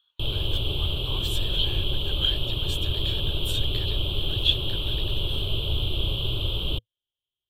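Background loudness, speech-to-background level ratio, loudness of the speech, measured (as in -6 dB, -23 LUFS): -27.5 LUFS, -4.0 dB, -31.5 LUFS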